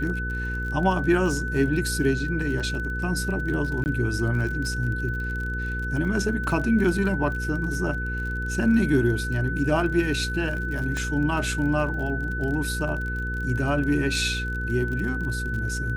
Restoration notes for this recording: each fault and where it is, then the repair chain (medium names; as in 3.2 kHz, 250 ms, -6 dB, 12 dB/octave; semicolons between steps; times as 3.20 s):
crackle 38 per s -32 dBFS
hum 60 Hz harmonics 8 -30 dBFS
whine 1.5 kHz -30 dBFS
3.84–3.86 s: dropout 19 ms
10.97 s: pop -17 dBFS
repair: de-click; de-hum 60 Hz, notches 8; band-stop 1.5 kHz, Q 30; interpolate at 3.84 s, 19 ms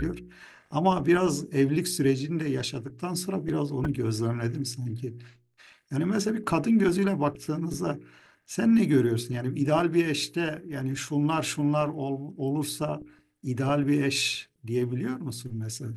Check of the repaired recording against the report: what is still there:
nothing left